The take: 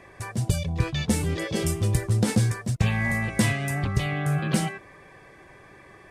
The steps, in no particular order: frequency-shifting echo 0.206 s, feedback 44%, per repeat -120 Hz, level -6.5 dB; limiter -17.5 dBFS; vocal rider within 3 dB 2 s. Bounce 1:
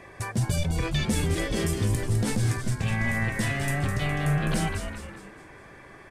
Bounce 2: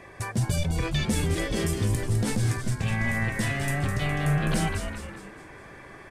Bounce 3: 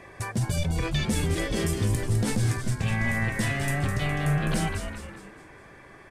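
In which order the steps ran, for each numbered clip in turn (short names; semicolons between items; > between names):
limiter > vocal rider > frequency-shifting echo; limiter > frequency-shifting echo > vocal rider; vocal rider > limiter > frequency-shifting echo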